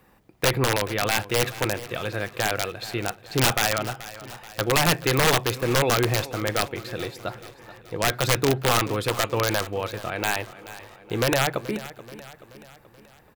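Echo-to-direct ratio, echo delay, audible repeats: −14.5 dB, 430 ms, 4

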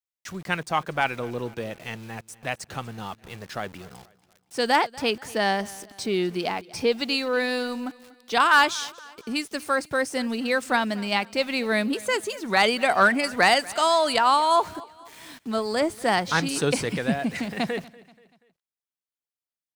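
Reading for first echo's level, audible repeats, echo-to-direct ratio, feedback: −21.5 dB, 2, −20.5 dB, 44%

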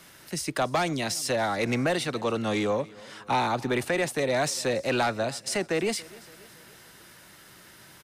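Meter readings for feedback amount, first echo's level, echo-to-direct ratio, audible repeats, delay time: 53%, −22.0 dB, −20.5 dB, 3, 282 ms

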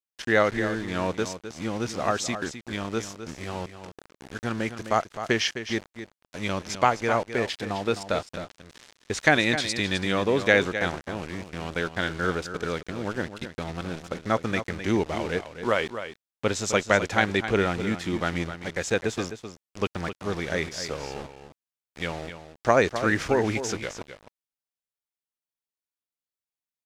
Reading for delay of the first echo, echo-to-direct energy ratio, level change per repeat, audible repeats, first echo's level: 259 ms, −10.5 dB, repeats not evenly spaced, 1, −10.5 dB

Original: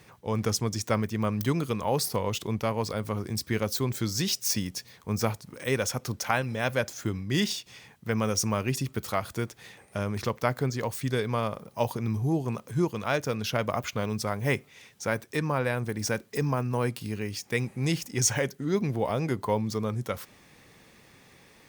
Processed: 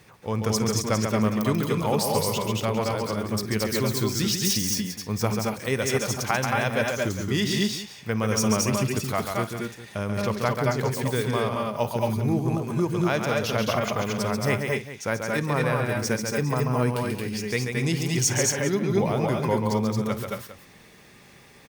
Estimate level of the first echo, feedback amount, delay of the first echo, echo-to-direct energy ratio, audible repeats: −19.0 dB, repeats not evenly spaced, 54 ms, 0.5 dB, 5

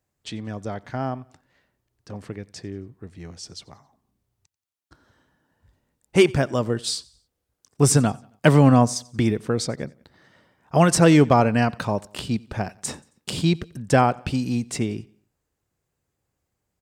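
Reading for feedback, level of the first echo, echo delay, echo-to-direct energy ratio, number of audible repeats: 43%, −24.0 dB, 90 ms, −23.0 dB, 2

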